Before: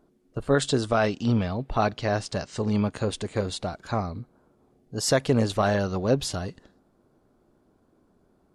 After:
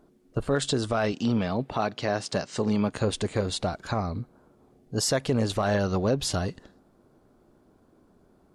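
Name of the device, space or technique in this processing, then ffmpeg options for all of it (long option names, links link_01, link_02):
clipper into limiter: -filter_complex "[0:a]asoftclip=type=hard:threshold=-12dB,alimiter=limit=-19.5dB:level=0:latency=1:release=201,asettb=1/sr,asplit=3[link_01][link_02][link_03];[link_01]atrim=end=1.124[link_04];[link_02]atrim=start=1.12:end=2.92,asetpts=PTS-STARTPTS,afade=type=in:duration=0.004:curve=qsin,afade=type=out:start_time=1.796:duration=0.004:curve=qsin,highpass=140[link_05];[link_03]atrim=start=2.916[link_06];[link_04][link_05]acrossfade=duration=0.004:curve1=hsin:curve2=qsin[link_07];[link_07][link_06]acrossfade=duration=0.004:curve1=qsin:curve2=hsin,volume=3.5dB"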